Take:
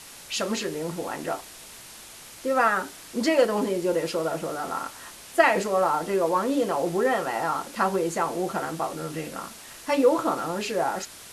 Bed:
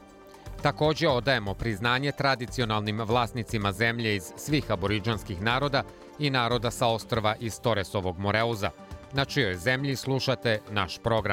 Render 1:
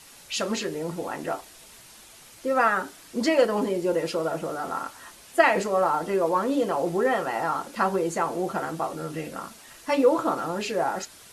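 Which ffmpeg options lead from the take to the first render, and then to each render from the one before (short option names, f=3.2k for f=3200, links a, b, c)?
-af "afftdn=nr=6:nf=-45"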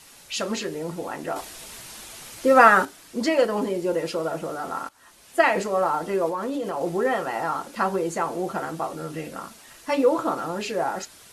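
-filter_complex "[0:a]asettb=1/sr,asplit=3[a][b][c];[a]atrim=end=6.294[d];[b]atrim=start=6.29:end=6.81,asetpts=PTS-STARTPTS,afade=t=in:d=0.004:c=qsin,afade=t=out:st=0.516:d=0.004:c=qsin,acompressor=threshold=-24dB:ratio=6:attack=3.2:release=140:knee=1:detection=peak[e];[c]atrim=start=6.806[f];[d][e]acrossfade=d=0.004:c1=hsin:c2=qsin[g];[g][f]acrossfade=d=0.004:c1=qsin:c2=hsin,asplit=4[h][i][j][k];[h]atrim=end=1.362[l];[i]atrim=start=1.358:end=2.852,asetpts=PTS-STARTPTS,volume=8dB[m];[j]atrim=start=2.848:end=4.89,asetpts=PTS-STARTPTS,afade=t=out:st=2.038:d=0.004:c=hsin:silence=0.141254[n];[k]atrim=start=4.89,asetpts=PTS-STARTPTS,afade=t=in:d=0.52:silence=0.141254[o];[l][m]acrossfade=d=0.004:c1=hsin:c2=hsin[p];[n][o]concat=n=2:v=0:a=1[q];[p][q]acrossfade=d=0.004:c1=hsin:c2=hsin"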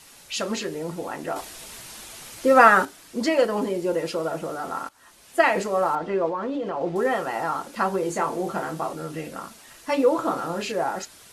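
-filter_complex "[0:a]asettb=1/sr,asplit=3[a][b][c];[a]atrim=end=5.954[d];[b]atrim=start=5.95:end=6.96,asetpts=PTS-STARTPTS,afade=t=in:d=0.004:c=qsin,afade=t=out:st=1.006:d=0.004:c=qsin,lowpass=3.5k[e];[c]atrim=start=6.956[f];[d][e]acrossfade=d=0.004:c1=hsin:c2=qsin[g];[g][f]acrossfade=d=0.004:c1=qsin:c2=hsin,asettb=1/sr,asplit=3[h][i][j];[h]atrim=end=8.004[k];[i]atrim=start=8:end=8.93,asetpts=PTS-STARTPTS,afade=t=in:d=0.004:c=qsin,afade=t=out:st=0.926:d=0.004:c=qsin,asplit=2[l][m];[m]adelay=26,volume=-7dB[n];[l][n]amix=inputs=2:normalize=0,atrim=end_sample=41013[o];[j]atrim=start=8.926[p];[k][o]acrossfade=d=0.004:c1=hsin:c2=qsin[q];[q][p]acrossfade=d=0.004:c1=qsin:c2=hsin,asettb=1/sr,asplit=3[r][s][t];[r]atrim=end=10.204[u];[s]atrim=start=10.2:end=10.72,asetpts=PTS-STARTPTS,afade=t=in:d=0.004:c=qsin,afade=t=out:st=0.516:d=0.004:c=qsin,asplit=2[v][w];[w]adelay=30,volume=-7dB[x];[v][x]amix=inputs=2:normalize=0,atrim=end_sample=22932[y];[t]atrim=start=10.716[z];[u][y]acrossfade=d=0.004:c1=hsin:c2=qsin[aa];[aa][z]acrossfade=d=0.004:c1=qsin:c2=hsin"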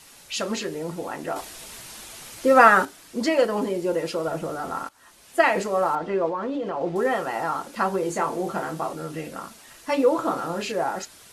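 -filter_complex "[0:a]asettb=1/sr,asplit=3[a][b][c];[a]atrim=end=4.274[d];[b]atrim=start=4.27:end=4.85,asetpts=PTS-STARTPTS,afade=t=in:d=0.004:c=qsin,afade=t=out:st=0.576:d=0.004:c=qsin,lowshelf=f=120:g=9.5[e];[c]atrim=start=4.846[f];[d][e]acrossfade=d=0.004:c1=hsin:c2=qsin[g];[g][f]acrossfade=d=0.004:c1=qsin:c2=hsin"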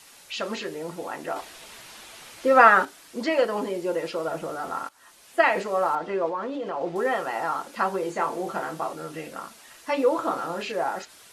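-filter_complex "[0:a]acrossover=split=4400[a][b];[b]acompressor=threshold=-48dB:ratio=4:attack=1:release=60[c];[a][c]amix=inputs=2:normalize=0,lowshelf=f=260:g=-9.5"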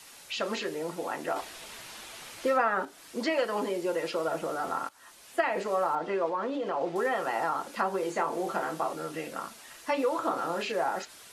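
-filter_complex "[0:a]acrossover=split=190|880[a][b][c];[a]acompressor=threshold=-53dB:ratio=4[d];[b]acompressor=threshold=-28dB:ratio=4[e];[c]acompressor=threshold=-31dB:ratio=4[f];[d][e][f]amix=inputs=3:normalize=0"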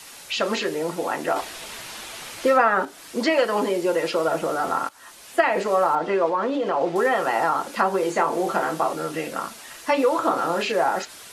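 -af "volume=8dB"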